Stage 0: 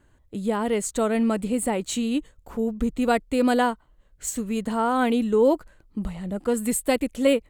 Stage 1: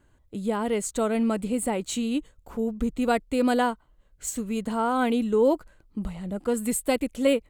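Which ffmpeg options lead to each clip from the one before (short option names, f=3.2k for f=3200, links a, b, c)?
-af "bandreject=f=1.8k:w=18,volume=-2dB"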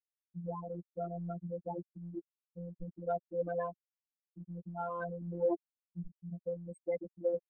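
-af "afftfilt=real='re*gte(hypot(re,im),0.251)':imag='im*gte(hypot(re,im),0.251)':win_size=1024:overlap=0.75,adynamicsmooth=sensitivity=0.5:basefreq=4k,afftfilt=real='hypot(re,im)*cos(PI*b)':imag='0':win_size=1024:overlap=0.75,volume=-6.5dB"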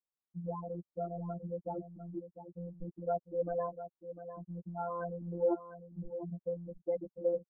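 -af "lowpass=f=1.3k:w=0.5412,lowpass=f=1.3k:w=1.3066,aecho=1:1:700:0.266,volume=1dB"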